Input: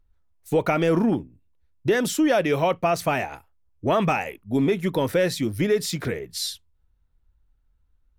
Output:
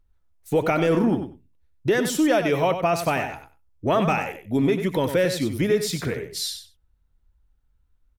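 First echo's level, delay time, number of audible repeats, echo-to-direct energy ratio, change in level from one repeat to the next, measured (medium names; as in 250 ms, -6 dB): -9.0 dB, 95 ms, 2, -9.0 dB, -16.5 dB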